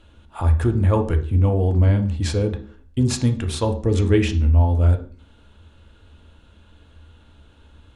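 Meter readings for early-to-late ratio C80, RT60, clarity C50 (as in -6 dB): 17.0 dB, 0.45 s, 11.5 dB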